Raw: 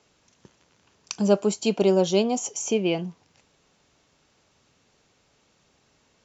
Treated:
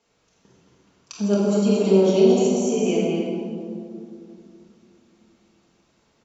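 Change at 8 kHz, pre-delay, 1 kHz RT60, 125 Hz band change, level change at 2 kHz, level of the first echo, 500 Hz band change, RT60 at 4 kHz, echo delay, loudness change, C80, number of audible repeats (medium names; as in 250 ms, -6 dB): no reading, 4 ms, 2.3 s, +5.5 dB, -1.0 dB, -3.5 dB, +4.5 dB, 1.2 s, 224 ms, +3.5 dB, -1.0 dB, 1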